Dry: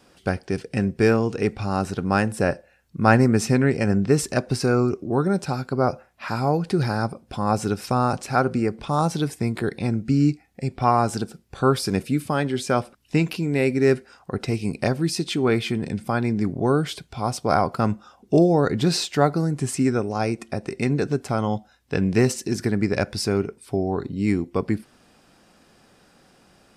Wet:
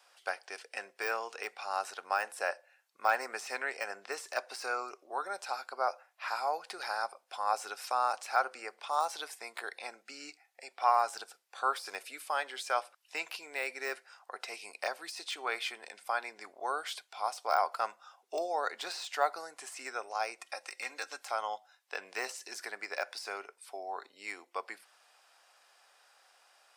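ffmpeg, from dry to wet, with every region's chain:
-filter_complex "[0:a]asettb=1/sr,asplit=3[s0][s1][s2];[s0]atrim=end=20.464[s3];[s1]atrim=start=20.46:end=21.31,asetpts=PTS-STARTPTS,afade=t=in:d=0.004:c=qsin,afade=t=out:st=0.846:d=0.004:c=qsin,tiltshelf=f=1400:g=-4.5,aecho=1:1:3.7:0.54,atrim=end_sample=37485[s4];[s2]atrim=start=21.306[s5];[s3][s4]acrossfade=d=0.004:c1=hsin:c2=qsin[s6];[s6][s5]acrossfade=d=0.004:c1=qsin:c2=hsin,deesser=0.7,highpass=f=690:w=0.5412,highpass=f=690:w=1.3066,volume=0.562"

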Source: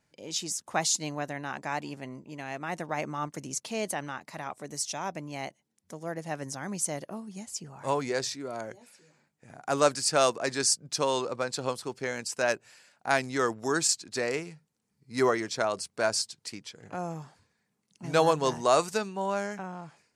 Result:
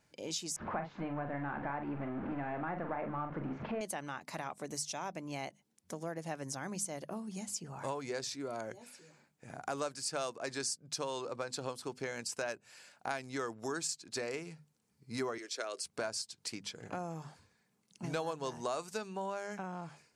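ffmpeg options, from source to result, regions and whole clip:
-filter_complex "[0:a]asettb=1/sr,asplit=3[s0][s1][s2];[s0]atrim=end=0.564[s3];[s1]atrim=start=0.56:end=3.81,asetpts=PTS-STARTPTS,afade=t=in:d=0.004:c=qsin,afade=t=out:st=3.246:d=0.004:c=qsin,aeval=exprs='val(0)+0.5*0.0251*sgn(val(0))':c=same,lowpass=f=1900:w=0.5412,lowpass=f=1900:w=1.3066,asplit=2[s4][s5];[s5]adelay=42,volume=0.422[s6];[s4][s6]amix=inputs=2:normalize=0,atrim=end_sample=143325[s7];[s2]atrim=start=3.806[s8];[s3][s7]acrossfade=d=0.004:c1=hsin:c2=qsin[s9];[s9][s8]acrossfade=d=0.004:c1=qsin:c2=hsin,asettb=1/sr,asplit=3[s10][s11][s12];[s10]atrim=end=15.384[s13];[s11]atrim=start=15.38:end=15.85,asetpts=PTS-STARTPTS,afade=t=in:d=0.004:c=qsin,afade=t=out:st=0.466:d=0.004:c=qsin,highpass=f=360:w=0.5412,highpass=f=360:w=1.3066,equalizer=f=860:w=1.7:g=-13[s14];[s12]atrim=start=15.846[s15];[s13][s14]acrossfade=d=0.004:c1=hsin:c2=qsin[s16];[s16][s15]acrossfade=d=0.004:c1=qsin:c2=hsin,bandreject=f=1900:w=21,acompressor=threshold=0.0112:ratio=4,bandreject=f=50:t=h:w=6,bandreject=f=100:t=h:w=6,bandreject=f=150:t=h:w=6,bandreject=f=200:t=h:w=6,bandreject=f=250:t=h:w=6,volume=1.26"

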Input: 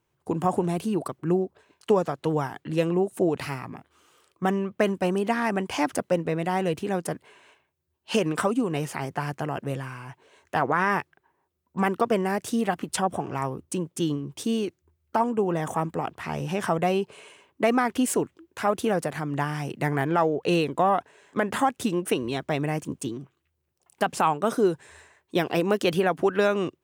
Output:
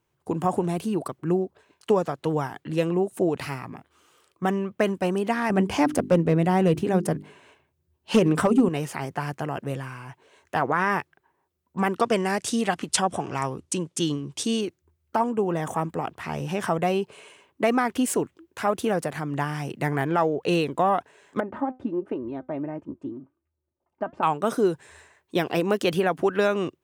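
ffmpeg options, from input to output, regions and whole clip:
-filter_complex "[0:a]asettb=1/sr,asplit=3[s0][s1][s2];[s0]atrim=end=5.504[s3];[s1]atrim=start=5.5:end=8.69,asetpts=PTS-STARTPTS,afade=t=in:d=0.004:c=qsin,afade=t=out:st=3.186:d=0.004:c=qsin,lowshelf=f=410:g=10.5,asoftclip=type=hard:threshold=0.282,bandreject=f=50:t=h:w=6,bandreject=f=100:t=h:w=6,bandreject=f=150:t=h:w=6,bandreject=f=200:t=h:w=6,bandreject=f=250:t=h:w=6,bandreject=f=300:t=h:w=6,bandreject=f=350:t=h:w=6,bandreject=f=400:t=h:w=6[s4];[s2]atrim=start=8.686[s5];[s3][s4]acrossfade=d=0.004:c1=hsin:c2=qsin[s6];[s6][s5]acrossfade=d=0.004:c1=qsin:c2=hsin,asettb=1/sr,asplit=3[s7][s8][s9];[s7]atrim=end=11.964[s10];[s8]atrim=start=11.96:end=14.61,asetpts=PTS-STARTPTS,afade=t=in:d=0.004:c=qsin,afade=t=out:st=2.646:d=0.004:c=qsin,lowpass=9500,equalizer=f=6700:w=0.32:g=8.5[s11];[s9]atrim=start=14.606[s12];[s10][s11]acrossfade=d=0.004:c1=hsin:c2=qsin[s13];[s13][s12]acrossfade=d=0.004:c1=qsin:c2=hsin,asettb=1/sr,asplit=3[s14][s15][s16];[s14]atrim=end=21.404[s17];[s15]atrim=start=21.4:end=24.23,asetpts=PTS-STARTPTS,afade=t=in:d=0.004:c=qsin,afade=t=out:st=2.826:d=0.004:c=qsin,lowpass=1000,aecho=1:1:3.3:0.49,atrim=end_sample=124803,flanger=delay=2.3:depth=1.6:regen=88:speed=1.4:shape=sinusoidal[s18];[s16]atrim=start=24.226[s19];[s17][s18]acrossfade=d=0.004:c1=hsin:c2=qsin[s20];[s20][s19]acrossfade=d=0.004:c1=qsin:c2=hsin"

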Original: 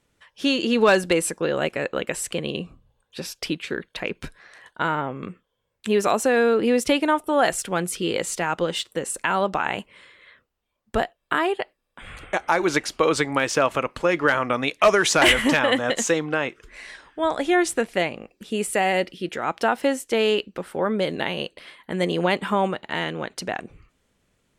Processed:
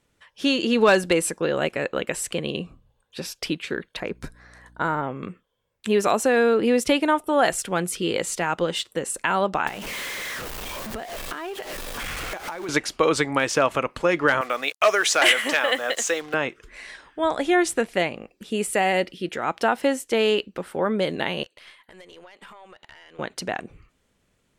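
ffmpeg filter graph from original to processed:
-filter_complex "[0:a]asettb=1/sr,asplit=3[s0][s1][s2];[s0]atrim=end=4.004[s3];[s1]atrim=start=4:end=5.03,asetpts=PTS-STARTPTS,afade=t=in:d=0.004:c=qsin,afade=t=out:st=1.026:d=0.004:c=qsin,equalizer=f=2900:w=1.9:g=-11,aeval=exprs='val(0)+0.00251*(sin(2*PI*60*n/s)+sin(2*PI*2*60*n/s)/2+sin(2*PI*3*60*n/s)/3+sin(2*PI*4*60*n/s)/4+sin(2*PI*5*60*n/s)/5)':c=same[s4];[s2]atrim=start=5.026[s5];[s3][s4]acrossfade=d=0.004:c1=hsin:c2=qsin[s6];[s6][s5]acrossfade=d=0.004:c1=qsin:c2=hsin,asettb=1/sr,asplit=3[s7][s8][s9];[s7]atrim=end=9.674[s10];[s8]atrim=start=9.67:end=12.69,asetpts=PTS-STARTPTS,afade=t=in:d=0.004:c=qsin,afade=t=out:st=3.016:d=0.004:c=qsin,aeval=exprs='val(0)+0.5*0.0473*sgn(val(0))':c=same,equalizer=f=84:t=o:w=1.7:g=-4.5,acompressor=threshold=0.0355:ratio=10:attack=3.2:release=140:knee=1:detection=peak[s11];[s9]atrim=start=12.686[s12];[s10][s11]acrossfade=d=0.004:c1=hsin:c2=qsin[s13];[s13][s12]acrossfade=d=0.004:c1=qsin:c2=hsin,asettb=1/sr,asplit=3[s14][s15][s16];[s14]atrim=end=14.414[s17];[s15]atrim=start=14.41:end=16.34,asetpts=PTS-STARTPTS,afade=t=in:d=0.004:c=qsin,afade=t=out:st=1.926:d=0.004:c=qsin,highpass=520,equalizer=f=950:w=4.5:g=-6.5,acrusher=bits=6:mix=0:aa=0.5[s18];[s16]atrim=start=16.336[s19];[s17][s18]acrossfade=d=0.004:c1=hsin:c2=qsin[s20];[s20][s19]acrossfade=d=0.004:c1=qsin:c2=hsin,asettb=1/sr,asplit=3[s21][s22][s23];[s21]atrim=end=21.434[s24];[s22]atrim=start=21.43:end=23.19,asetpts=PTS-STARTPTS,afade=t=in:d=0.004:c=qsin,afade=t=out:st=1.756:d=0.004:c=qsin,highpass=f=920:p=1,acompressor=threshold=0.0126:ratio=12:attack=3.2:release=140:knee=1:detection=peak,aeval=exprs='(tanh(39.8*val(0)+0.55)-tanh(0.55))/39.8':c=same[s25];[s23]atrim=start=23.186[s26];[s24][s25]acrossfade=d=0.004:c1=hsin:c2=qsin[s27];[s27][s26]acrossfade=d=0.004:c1=qsin:c2=hsin"

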